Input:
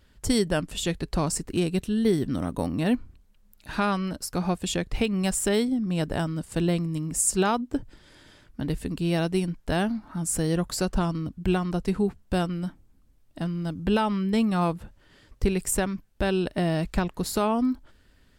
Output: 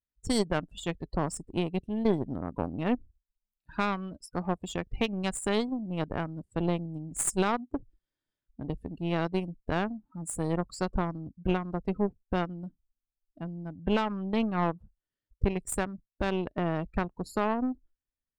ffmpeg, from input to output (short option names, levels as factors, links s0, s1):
-af "afftdn=nr=28:nf=-33,aeval=exprs='0.251*(cos(1*acos(clip(val(0)/0.251,-1,1)))-cos(1*PI/2))+0.0562*(cos(2*acos(clip(val(0)/0.251,-1,1)))-cos(2*PI/2))+0.0282*(cos(3*acos(clip(val(0)/0.251,-1,1)))-cos(3*PI/2))+0.00891*(cos(7*acos(clip(val(0)/0.251,-1,1)))-cos(7*PI/2))+0.00398*(cos(8*acos(clip(val(0)/0.251,-1,1)))-cos(8*PI/2))':c=same,volume=0.708"